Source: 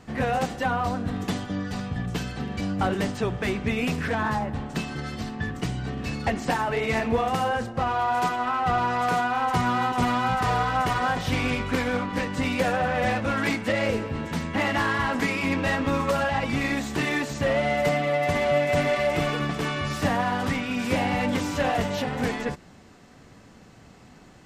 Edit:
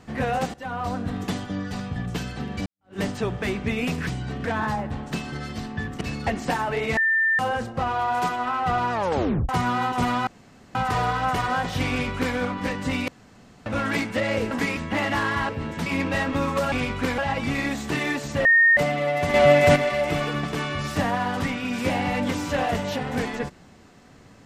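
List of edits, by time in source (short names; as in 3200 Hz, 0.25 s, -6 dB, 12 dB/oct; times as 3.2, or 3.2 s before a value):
0.54–0.95 fade in, from -16.5 dB
2.66–2.99 fade in exponential
5.64–6.01 move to 4.07
6.97–7.39 bleep 1790 Hz -17.5 dBFS
8.92 tape stop 0.57 s
10.27 insert room tone 0.48 s
11.42–11.88 copy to 16.24
12.6–13.18 room tone
14.03–14.4 swap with 15.12–15.38
17.51–17.83 bleep 1840 Hz -12.5 dBFS
18.4–18.82 gain +7 dB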